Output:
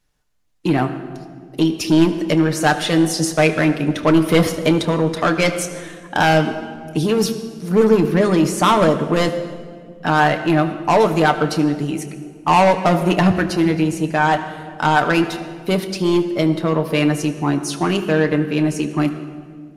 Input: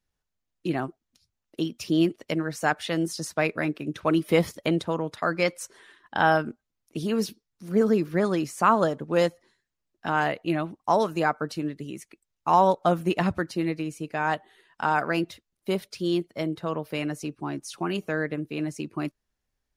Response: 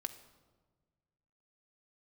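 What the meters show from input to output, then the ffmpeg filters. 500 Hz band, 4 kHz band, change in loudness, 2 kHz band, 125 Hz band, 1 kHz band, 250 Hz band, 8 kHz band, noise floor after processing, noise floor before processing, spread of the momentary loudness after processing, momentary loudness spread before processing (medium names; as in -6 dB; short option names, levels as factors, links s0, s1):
+8.5 dB, +11.0 dB, +9.0 dB, +8.5 dB, +12.0 dB, +7.5 dB, +10.5 dB, +12.5 dB, -40 dBFS, -83 dBFS, 12 LU, 12 LU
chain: -filter_complex "[0:a]aeval=exprs='0.422*sin(PI/2*1.78*val(0)/0.422)':c=same,aeval=exprs='0.447*(cos(1*acos(clip(val(0)/0.447,-1,1)))-cos(1*PI/2))+0.0631*(cos(2*acos(clip(val(0)/0.447,-1,1)))-cos(2*PI/2))+0.0398*(cos(5*acos(clip(val(0)/0.447,-1,1)))-cos(5*PI/2))':c=same[s0];[1:a]atrim=start_sample=2205,asetrate=25578,aresample=44100[s1];[s0][s1]afir=irnorm=-1:irlink=0,volume=0.891"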